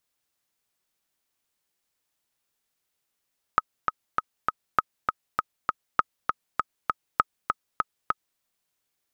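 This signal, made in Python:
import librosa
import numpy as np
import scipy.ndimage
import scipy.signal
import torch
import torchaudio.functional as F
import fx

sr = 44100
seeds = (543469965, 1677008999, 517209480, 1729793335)

y = fx.click_track(sr, bpm=199, beats=4, bars=4, hz=1270.0, accent_db=4.5, level_db=-5.0)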